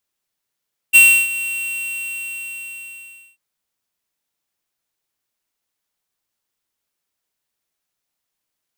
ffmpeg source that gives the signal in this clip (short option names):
-f lavfi -i "aevalsrc='0.447*(2*lt(mod(2730*t,1),0.5)-1)':d=2.44:s=44100,afade=t=in:d=0.026,afade=t=out:st=0.026:d=0.316:silence=0.15,afade=t=out:st=0.48:d=1.96"